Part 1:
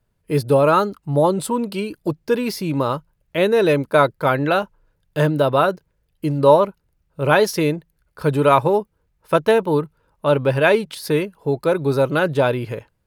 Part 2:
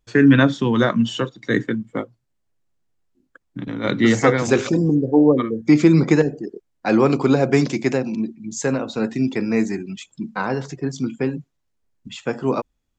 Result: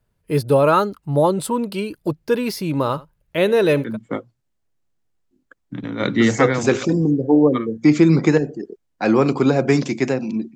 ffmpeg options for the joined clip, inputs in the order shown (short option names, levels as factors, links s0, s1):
-filter_complex "[0:a]asettb=1/sr,asplit=3[s0][s1][s2];[s0]atrim=end=2.714[s3];[s1]atrim=start=2.71:end=3.97,asetpts=PTS-STARTPTS,afade=t=in:d=0.004:c=qsin,afade=t=out:st=1.256:d=0.004:c=qsin,aecho=1:1:76:0.106,atrim=end_sample=55566[s4];[s2]atrim=start=3.966[s5];[s3][s4]acrossfade=d=0.004:c1=hsin:c2=qsin[s6];[s6][s5]acrossfade=d=0.004:c1=qsin:c2=hsin,apad=whole_dur=10.55,atrim=end=10.55,atrim=end=3.97,asetpts=PTS-STARTPTS[s7];[1:a]atrim=start=1.63:end=8.39,asetpts=PTS-STARTPTS[s8];[s7][s8]acrossfade=d=0.18:c1=tri:c2=tri"